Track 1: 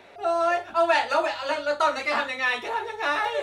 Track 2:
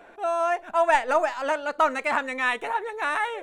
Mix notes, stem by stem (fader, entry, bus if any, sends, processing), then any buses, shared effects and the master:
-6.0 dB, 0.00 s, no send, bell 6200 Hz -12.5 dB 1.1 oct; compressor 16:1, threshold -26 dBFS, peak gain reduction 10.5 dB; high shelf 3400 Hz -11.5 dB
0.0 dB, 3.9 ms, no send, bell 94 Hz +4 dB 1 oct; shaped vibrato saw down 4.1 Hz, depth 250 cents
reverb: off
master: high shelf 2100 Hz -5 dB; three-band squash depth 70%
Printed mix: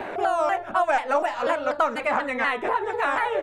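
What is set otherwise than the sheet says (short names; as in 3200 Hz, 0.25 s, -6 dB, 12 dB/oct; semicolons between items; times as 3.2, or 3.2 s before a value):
stem 1 -6.0 dB -> +2.5 dB; stem 2: polarity flipped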